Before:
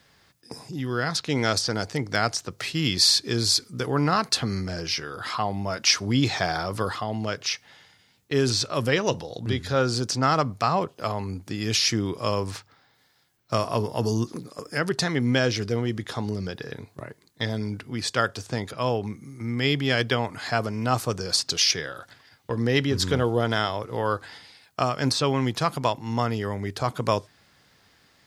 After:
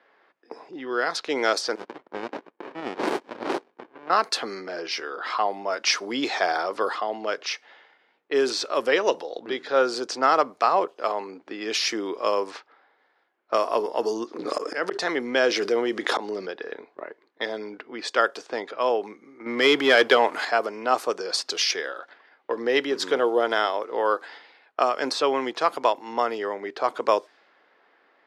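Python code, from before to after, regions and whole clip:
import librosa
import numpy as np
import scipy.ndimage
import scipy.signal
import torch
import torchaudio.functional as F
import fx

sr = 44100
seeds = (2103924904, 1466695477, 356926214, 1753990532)

y = fx.chain(x, sr, fx.bessel_highpass(hz=1900.0, order=8),
    fx.peak_eq(hz=5200.0, db=7.0, octaves=0.45),
    fx.running_max(window=65), at=(1.75, 4.1))
y = fx.chain(y, sr, fx.auto_swell(attack_ms=548.0),
    fx.env_flatten(amount_pct=70), at=(14.39, 16.46))
y = fx.chain(y, sr, fx.highpass(hz=53.0, slope=12),
    fx.leveller(passes=2), at=(19.46, 20.45))
y = scipy.signal.sosfilt(scipy.signal.butter(4, 350.0, 'highpass', fs=sr, output='sos'), y)
y = fx.env_lowpass(y, sr, base_hz=2100.0, full_db=-23.0)
y = fx.high_shelf(y, sr, hz=3900.0, db=-12.0)
y = y * librosa.db_to_amplitude(4.0)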